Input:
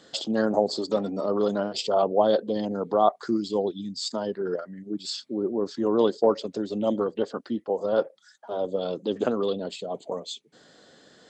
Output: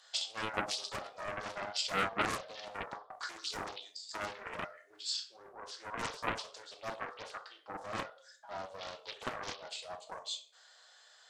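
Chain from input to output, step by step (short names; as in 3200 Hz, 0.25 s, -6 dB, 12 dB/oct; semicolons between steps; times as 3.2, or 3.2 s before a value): inverse Chebyshev high-pass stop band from 230 Hz, stop band 60 dB; high shelf 7300 Hz +5.5 dB; 2.67–5.01 negative-ratio compressor -37 dBFS, ratio -0.5; reverb RT60 0.45 s, pre-delay 6 ms, DRR 2 dB; Doppler distortion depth 0.8 ms; gain -6 dB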